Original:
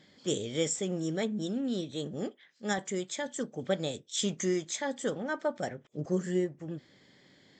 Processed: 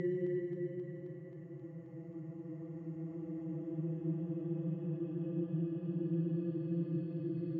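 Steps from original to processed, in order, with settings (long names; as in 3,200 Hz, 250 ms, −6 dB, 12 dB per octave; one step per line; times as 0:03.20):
spectral dynamics exaggerated over time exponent 1.5
extreme stretch with random phases 29×, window 0.25 s, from 0:06.51
high-frequency loss of the air 120 metres
feedback echo with a high-pass in the loop 266 ms, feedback 80%, high-pass 330 Hz, level −11.5 dB
level +7 dB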